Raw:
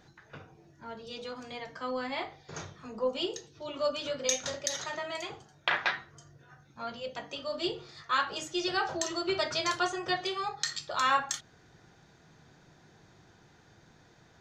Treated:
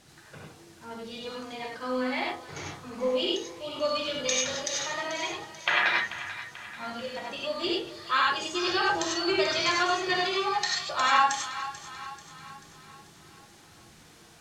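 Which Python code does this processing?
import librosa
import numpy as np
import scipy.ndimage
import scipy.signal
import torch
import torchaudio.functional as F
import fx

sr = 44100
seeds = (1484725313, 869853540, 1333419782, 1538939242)

p1 = fx.spec_quant(x, sr, step_db=15)
p2 = fx.dmg_noise_colour(p1, sr, seeds[0], colour='white', level_db=-58.0)
p3 = scipy.signal.sosfilt(scipy.signal.butter(2, 8100.0, 'lowpass', fs=sr, output='sos'), p2)
p4 = fx.rev_gated(p3, sr, seeds[1], gate_ms=120, shape='rising', drr_db=-1.5)
p5 = fx.dynamic_eq(p4, sr, hz=2300.0, q=1.4, threshold_db=-41.0, ratio=4.0, max_db=5)
y = p5 + fx.echo_split(p5, sr, split_hz=690.0, low_ms=86, high_ms=438, feedback_pct=52, wet_db=-13.0, dry=0)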